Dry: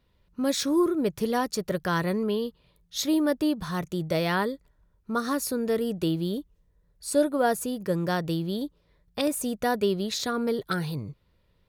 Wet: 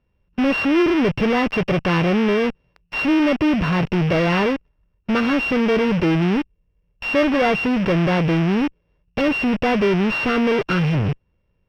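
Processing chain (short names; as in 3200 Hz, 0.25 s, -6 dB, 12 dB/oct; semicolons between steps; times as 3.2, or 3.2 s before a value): sample sorter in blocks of 16 samples; in parallel at -5.5 dB: fuzz box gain 51 dB, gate -50 dBFS; on the sum: air absorption 270 m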